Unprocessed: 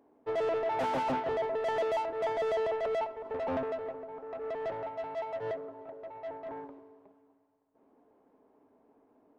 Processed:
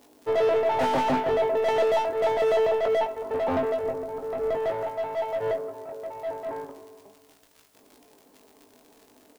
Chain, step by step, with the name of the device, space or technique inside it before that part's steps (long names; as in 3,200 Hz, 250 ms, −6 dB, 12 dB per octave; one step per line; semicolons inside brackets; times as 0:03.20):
record under a worn stylus (stylus tracing distortion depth 0.064 ms; surface crackle 84 per second −47 dBFS; white noise bed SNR 38 dB)
0:03.83–0:04.57: low-shelf EQ 250 Hz +9.5 dB
double-tracking delay 20 ms −6 dB
level +6.5 dB